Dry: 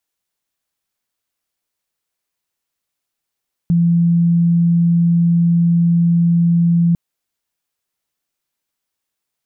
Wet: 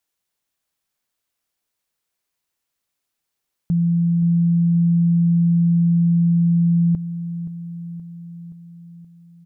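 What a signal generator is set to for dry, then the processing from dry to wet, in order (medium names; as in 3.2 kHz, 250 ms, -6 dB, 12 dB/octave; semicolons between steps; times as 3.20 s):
tone sine 170 Hz -10 dBFS 3.25 s
peak limiter -14.5 dBFS; feedback delay 524 ms, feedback 60%, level -15 dB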